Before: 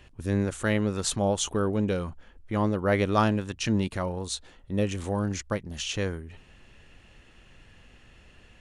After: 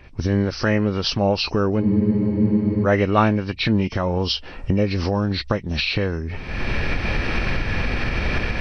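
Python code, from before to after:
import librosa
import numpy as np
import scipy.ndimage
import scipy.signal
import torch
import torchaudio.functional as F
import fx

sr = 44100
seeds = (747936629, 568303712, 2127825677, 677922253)

y = fx.freq_compress(x, sr, knee_hz=1800.0, ratio=1.5)
y = fx.recorder_agc(y, sr, target_db=-19.0, rise_db_per_s=44.0, max_gain_db=30)
y = fx.spec_freeze(y, sr, seeds[0], at_s=1.83, hold_s=1.02)
y = y * librosa.db_to_amplitude(6.0)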